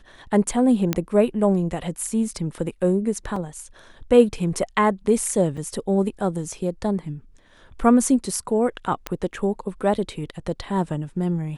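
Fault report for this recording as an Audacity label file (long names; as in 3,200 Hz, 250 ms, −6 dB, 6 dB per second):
0.930000	0.930000	click −7 dBFS
3.360000	3.360000	drop-out 3.6 ms
5.570000	5.570000	drop-out 4.7 ms
9.070000	9.070000	click −11 dBFS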